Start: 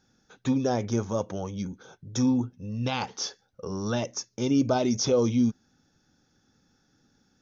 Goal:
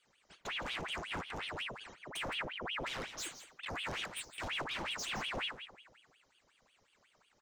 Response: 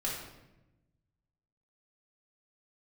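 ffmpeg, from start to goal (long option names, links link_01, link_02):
-filter_complex "[0:a]asettb=1/sr,asplit=3[link_01][link_02][link_03];[link_01]atrim=end=2.244[link_04];[link_02]atrim=start=2.24:end=2.66,asetpts=PTS-STARTPTS,afade=type=in:duration=0.004:curve=qsin,afade=type=out:start_time=0.416:duration=0.004:curve=qsin,aeval=exprs='val(0)+0.0141*(sin(2*PI*50*n/s)+sin(2*PI*2*50*n/s)/2+sin(2*PI*3*50*n/s)/3+sin(2*PI*4*50*n/s)/4+sin(2*PI*5*50*n/s)/5)':channel_layout=same[link_05];[link_03]atrim=start=2.656[link_06];[link_04][link_05]acrossfade=duration=0.004:curve1=hsin:curve2=qsin[link_07];[link_07][link_06]acrossfade=duration=0.004:curve1=qsin:curve2=hsin,alimiter=limit=-20dB:level=0:latency=1:release=173,volume=32.5dB,asoftclip=hard,volume=-32.5dB,aecho=1:1:165:0.251,asplit=2[link_08][link_09];[1:a]atrim=start_sample=2205[link_10];[link_09][link_10]afir=irnorm=-1:irlink=0,volume=-13dB[link_11];[link_08][link_11]amix=inputs=2:normalize=0,aeval=exprs='val(0)*sin(2*PI*1700*n/s+1700*0.85/5.5*sin(2*PI*5.5*n/s))':channel_layout=same,volume=-4.5dB"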